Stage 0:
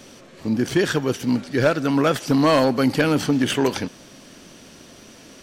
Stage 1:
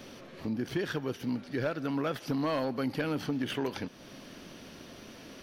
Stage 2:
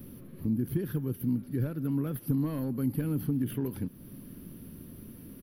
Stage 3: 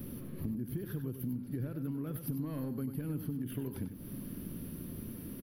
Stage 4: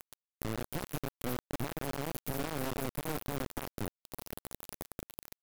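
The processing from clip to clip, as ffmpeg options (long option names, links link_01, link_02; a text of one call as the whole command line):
ffmpeg -i in.wav -af "equalizer=frequency=7700:width=1.8:gain=-13.5,acompressor=threshold=-35dB:ratio=2,volume=-2.5dB" out.wav
ffmpeg -i in.wav -af "firequalizer=gain_entry='entry(130,0);entry(670,-24);entry(990,-20);entry(2200,-23);entry(7400,-27);entry(11000,5)':delay=0.05:min_phase=1,volume=8.5dB" out.wav
ffmpeg -i in.wav -af "acompressor=threshold=-38dB:ratio=6,aecho=1:1:96:0.335,volume=3dB" out.wav
ffmpeg -i in.wav -af "acrusher=bits=3:dc=4:mix=0:aa=0.000001,volume=2.5dB" out.wav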